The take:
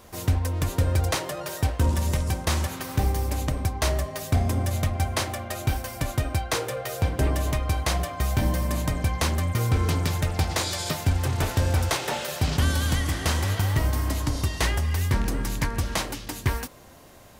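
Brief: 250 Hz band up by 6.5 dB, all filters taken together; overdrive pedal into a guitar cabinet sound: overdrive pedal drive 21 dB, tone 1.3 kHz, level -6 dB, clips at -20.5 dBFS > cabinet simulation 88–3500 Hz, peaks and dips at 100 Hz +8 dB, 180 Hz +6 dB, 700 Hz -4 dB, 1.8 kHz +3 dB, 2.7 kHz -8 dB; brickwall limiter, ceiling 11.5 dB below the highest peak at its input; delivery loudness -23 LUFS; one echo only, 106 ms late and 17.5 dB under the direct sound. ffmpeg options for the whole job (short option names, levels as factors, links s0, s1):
-filter_complex "[0:a]equalizer=f=250:t=o:g=6,alimiter=limit=0.0794:level=0:latency=1,aecho=1:1:106:0.133,asplit=2[s0][s1];[s1]highpass=f=720:p=1,volume=11.2,asoftclip=type=tanh:threshold=0.0944[s2];[s0][s2]amix=inputs=2:normalize=0,lowpass=f=1300:p=1,volume=0.501,highpass=88,equalizer=f=100:t=q:w=4:g=8,equalizer=f=180:t=q:w=4:g=6,equalizer=f=700:t=q:w=4:g=-4,equalizer=f=1800:t=q:w=4:g=3,equalizer=f=2700:t=q:w=4:g=-8,lowpass=f=3500:w=0.5412,lowpass=f=3500:w=1.3066,volume=2.37"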